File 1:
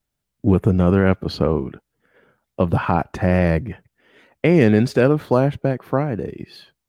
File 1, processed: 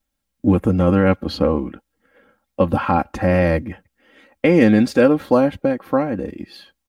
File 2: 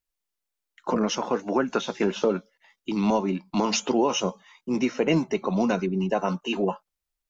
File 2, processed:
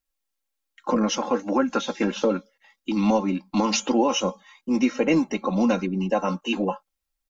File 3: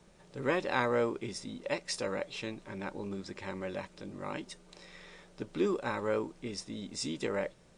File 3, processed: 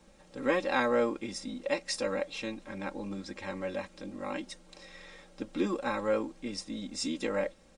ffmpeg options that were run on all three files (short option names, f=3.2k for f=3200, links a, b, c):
-af "aecho=1:1:3.7:0.72"